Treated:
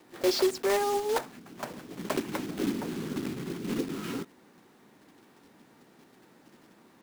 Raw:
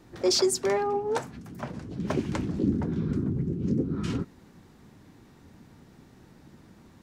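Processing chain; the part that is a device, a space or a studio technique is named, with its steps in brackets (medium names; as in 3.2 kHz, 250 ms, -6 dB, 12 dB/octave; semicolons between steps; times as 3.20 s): early digital voice recorder (band-pass 290–3500 Hz; block-companded coder 3-bit)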